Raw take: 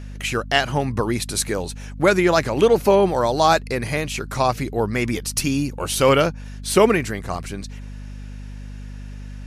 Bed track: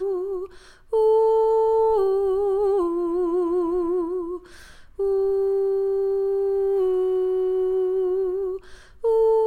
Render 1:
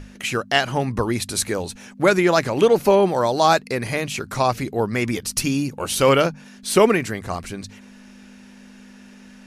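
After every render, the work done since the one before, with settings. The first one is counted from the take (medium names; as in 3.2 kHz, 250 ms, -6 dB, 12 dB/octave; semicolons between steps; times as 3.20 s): hum notches 50/100/150 Hz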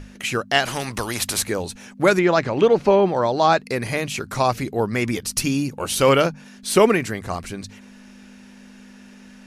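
0.65–1.42 s: spectrum-flattening compressor 2:1; 2.19–3.60 s: distance through air 120 m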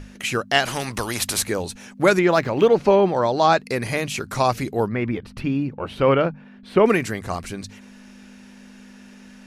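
2.29–2.77 s: median filter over 5 samples; 4.88–6.86 s: distance through air 480 m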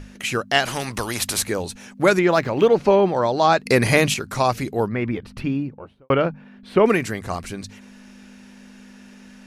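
3.66–4.14 s: gain +8 dB; 5.42–6.10 s: studio fade out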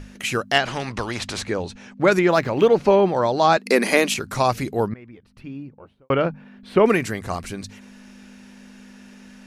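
0.58–2.12 s: distance through air 110 m; 3.57–4.15 s: elliptic high-pass 190 Hz; 4.94–6.28 s: fade in quadratic, from -20 dB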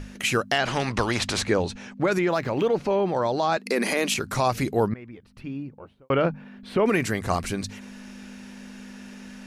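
peak limiter -12 dBFS, peak gain reduction 10 dB; gain riding within 3 dB 0.5 s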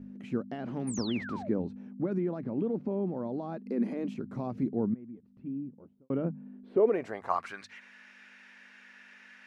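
band-pass sweep 230 Hz -> 1.9 kHz, 6.44–7.71 s; 0.87–1.49 s: painted sound fall 540–10000 Hz -42 dBFS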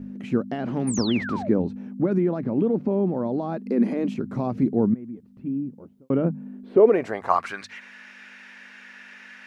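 trim +9 dB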